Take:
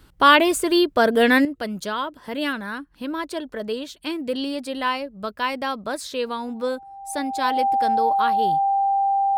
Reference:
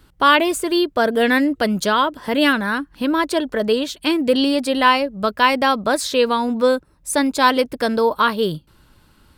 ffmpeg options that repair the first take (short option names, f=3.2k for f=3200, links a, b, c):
-af "bandreject=f=790:w=30,asetnsamples=n=441:p=0,asendcmd='1.45 volume volume 9.5dB',volume=0dB"